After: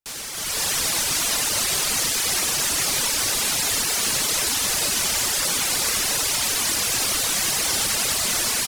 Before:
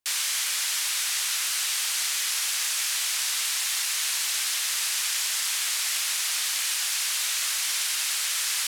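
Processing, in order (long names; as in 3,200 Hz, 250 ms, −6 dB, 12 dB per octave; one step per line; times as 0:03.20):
guitar amp tone stack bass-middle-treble 6-0-2
single-tap delay 94 ms −6 dB
in parallel at −8 dB: sample-rate reduction 4,500 Hz, jitter 0%
on the sum: hard clipping −35 dBFS, distortion −20 dB
reverb reduction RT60 1 s
automatic gain control gain up to 13 dB
level +8.5 dB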